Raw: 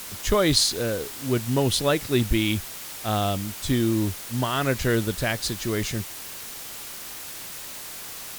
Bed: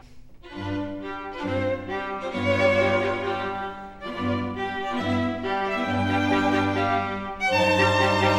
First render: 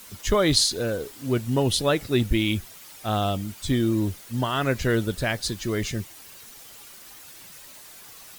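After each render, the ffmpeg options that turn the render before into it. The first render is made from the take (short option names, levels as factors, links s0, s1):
-af "afftdn=nr=10:nf=-38"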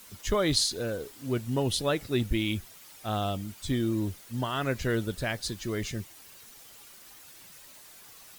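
-af "volume=0.531"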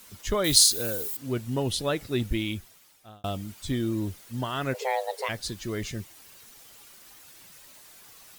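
-filter_complex "[0:a]asettb=1/sr,asplit=3[s0][s1][s2];[s0]atrim=end=0.444[s3];[s1]atrim=start=0.44:end=1.17,asetpts=PTS-STARTPTS,afade=t=in:d=0.004:c=qsin,afade=t=out:st=0.726:d=0.004:c=qsin,aemphasis=mode=production:type=75fm[s4];[s2]atrim=start=1.166[s5];[s3][s4]acrossfade=d=0.004:c1=hsin:c2=qsin[s6];[s6][s5]acrossfade=d=0.004:c1=qsin:c2=hsin,asplit=3[s7][s8][s9];[s7]afade=t=out:st=4.73:d=0.02[s10];[s8]afreqshift=390,afade=t=in:st=4.73:d=0.02,afade=t=out:st=5.28:d=0.02[s11];[s9]afade=t=in:st=5.28:d=0.02[s12];[s10][s11][s12]amix=inputs=3:normalize=0,asplit=2[s13][s14];[s13]atrim=end=3.24,asetpts=PTS-STARTPTS,afade=t=out:st=2.35:d=0.89[s15];[s14]atrim=start=3.24,asetpts=PTS-STARTPTS,afade=t=in:d=0.004:c=hsin[s16];[s15][s16]concat=n=2:v=0:a=1"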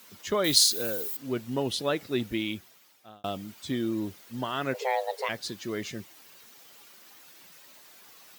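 -af "highpass=180,equalizer=f=9500:w=1.1:g=-6.5"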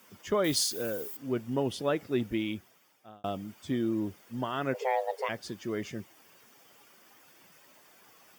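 -af "highshelf=f=2100:g=-7.5,bandreject=f=4000:w=5.4"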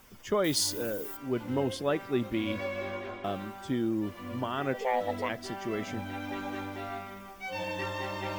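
-filter_complex "[1:a]volume=0.178[s0];[0:a][s0]amix=inputs=2:normalize=0"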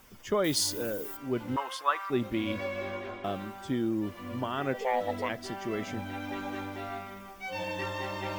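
-filter_complex "[0:a]asettb=1/sr,asplit=3[s0][s1][s2];[s0]atrim=end=1.564[s3];[s1]atrim=start=1.56:end=2.1,asetpts=PTS-STARTPTS,afade=t=in:d=0.004:c=qsin,afade=t=out:st=0.536:d=0.004:c=qsin,highpass=f=1100:t=q:w=5.5[s4];[s2]atrim=start=2.096[s5];[s3][s4]acrossfade=d=0.004:c1=hsin:c2=qsin[s6];[s6][s5]acrossfade=d=0.004:c1=qsin:c2=hsin"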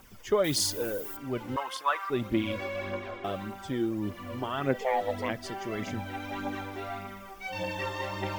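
-af "aphaser=in_gain=1:out_gain=1:delay=2.8:decay=0.44:speed=1.7:type=triangular"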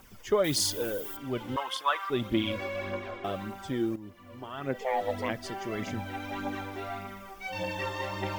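-filter_complex "[0:a]asettb=1/sr,asplit=3[s0][s1][s2];[s0]atrim=end=0.654[s3];[s1]atrim=start=0.65:end=2.5,asetpts=PTS-STARTPTS,afade=t=in:d=0.004:c=qsin,afade=t=out:st=1.846:d=0.004:c=qsin,equalizer=f=3300:t=o:w=0.27:g=8.5[s4];[s2]atrim=start=2.496[s5];[s3][s4]acrossfade=d=0.004:c1=hsin:c2=qsin[s6];[s6][s5]acrossfade=d=0.004:c1=qsin:c2=hsin,asplit=2[s7][s8];[s7]atrim=end=3.96,asetpts=PTS-STARTPTS,afade=t=out:st=3.956:d=0.004:c=hsin:silence=0.237137[s9];[s8]atrim=start=3.96,asetpts=PTS-STARTPTS,afade=t=in:d=1.1:c=qua:silence=0.237137[s10];[s9][s10]concat=n=2:v=0:a=1"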